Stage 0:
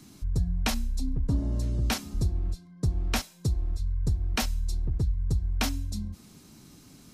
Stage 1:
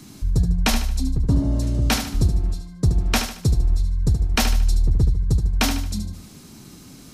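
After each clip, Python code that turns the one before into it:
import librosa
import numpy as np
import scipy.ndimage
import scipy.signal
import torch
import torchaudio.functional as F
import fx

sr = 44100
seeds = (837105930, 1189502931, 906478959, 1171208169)

y = fx.echo_feedback(x, sr, ms=75, feedback_pct=40, wet_db=-8)
y = y * librosa.db_to_amplitude(8.0)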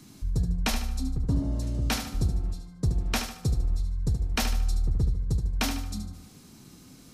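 y = fx.rev_fdn(x, sr, rt60_s=1.4, lf_ratio=1.0, hf_ratio=0.35, size_ms=12.0, drr_db=14.0)
y = y * librosa.db_to_amplitude(-7.5)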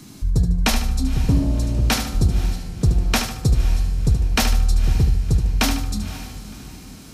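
y = fx.echo_diffused(x, sr, ms=525, feedback_pct=42, wet_db=-14.0)
y = y * librosa.db_to_amplitude(8.5)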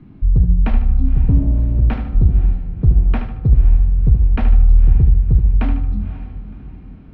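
y = scipy.signal.sosfilt(scipy.signal.butter(4, 2700.0, 'lowpass', fs=sr, output='sos'), x)
y = fx.tilt_eq(y, sr, slope=-3.0)
y = y * librosa.db_to_amplitude(-6.5)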